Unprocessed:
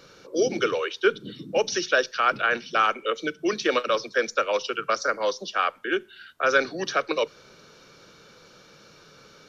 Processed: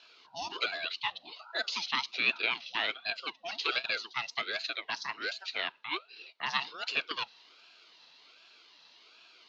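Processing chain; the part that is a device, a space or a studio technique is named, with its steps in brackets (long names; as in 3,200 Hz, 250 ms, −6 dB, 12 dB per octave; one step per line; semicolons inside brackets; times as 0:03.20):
voice changer toy (ring modulator whose carrier an LFO sweeps 760 Hz, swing 55%, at 1.3 Hz; loudspeaker in its box 560–4,900 Hz, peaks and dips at 560 Hz −10 dB, 800 Hz −10 dB, 1,100 Hz −5 dB, 1,800 Hz −9 dB, 2,800 Hz +5 dB, 4,100 Hz +8 dB)
level −2.5 dB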